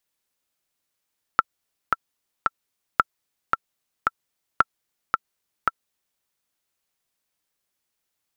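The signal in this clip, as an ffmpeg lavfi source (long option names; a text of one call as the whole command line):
ffmpeg -f lavfi -i "aevalsrc='pow(10,(-2-4*gte(mod(t,3*60/112),60/112))/20)*sin(2*PI*1340*mod(t,60/112))*exp(-6.91*mod(t,60/112)/0.03)':duration=4.82:sample_rate=44100" out.wav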